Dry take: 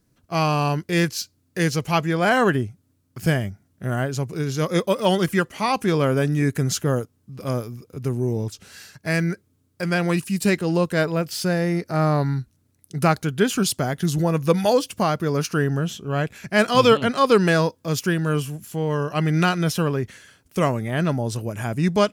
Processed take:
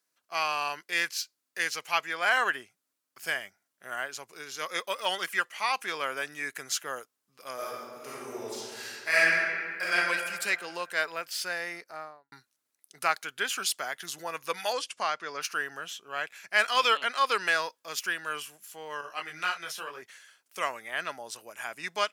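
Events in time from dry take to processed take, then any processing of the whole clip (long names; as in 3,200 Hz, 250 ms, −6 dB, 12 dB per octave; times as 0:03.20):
0:07.54–0:09.94: thrown reverb, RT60 2.1 s, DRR −8.5 dB
0:11.67–0:12.32: fade out and dull
0:14.72–0:15.41: low-pass filter 11,000 Hz → 6,100 Hz 24 dB per octave
0:19.01–0:20.02: micro pitch shift up and down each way 31 cents
whole clip: high-pass filter 920 Hz 12 dB per octave; dynamic equaliser 2,100 Hz, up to +5 dB, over −39 dBFS, Q 0.86; level −5.5 dB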